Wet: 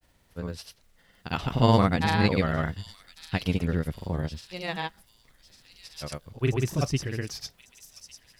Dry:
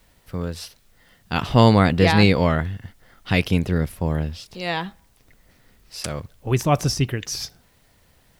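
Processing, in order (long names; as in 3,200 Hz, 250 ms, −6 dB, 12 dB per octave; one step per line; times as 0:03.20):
granular cloud, pitch spread up and down by 0 semitones
delay with a high-pass on its return 1,151 ms, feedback 40%, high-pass 4,700 Hz, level −7 dB
level −5 dB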